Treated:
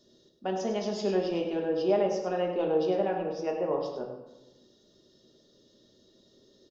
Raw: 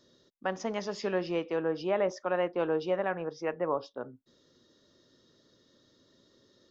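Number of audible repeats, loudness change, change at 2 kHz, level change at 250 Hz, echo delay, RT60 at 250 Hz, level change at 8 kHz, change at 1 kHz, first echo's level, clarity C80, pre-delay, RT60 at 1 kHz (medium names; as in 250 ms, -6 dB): 1, +2.5 dB, -5.0 dB, +4.0 dB, 101 ms, 1.1 s, no reading, +1.0 dB, -10.0 dB, 6.0 dB, 3 ms, 1.0 s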